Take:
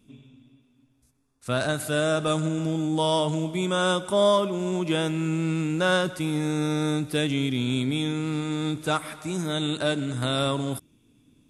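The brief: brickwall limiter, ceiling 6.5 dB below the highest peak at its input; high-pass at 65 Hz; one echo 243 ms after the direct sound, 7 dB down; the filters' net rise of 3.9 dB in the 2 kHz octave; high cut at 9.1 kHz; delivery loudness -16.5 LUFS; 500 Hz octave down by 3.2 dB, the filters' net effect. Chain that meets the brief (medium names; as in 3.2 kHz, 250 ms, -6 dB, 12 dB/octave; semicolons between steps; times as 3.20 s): high-pass 65 Hz; low-pass 9.1 kHz; peaking EQ 500 Hz -4.5 dB; peaking EQ 2 kHz +6.5 dB; peak limiter -15.5 dBFS; delay 243 ms -7 dB; trim +10 dB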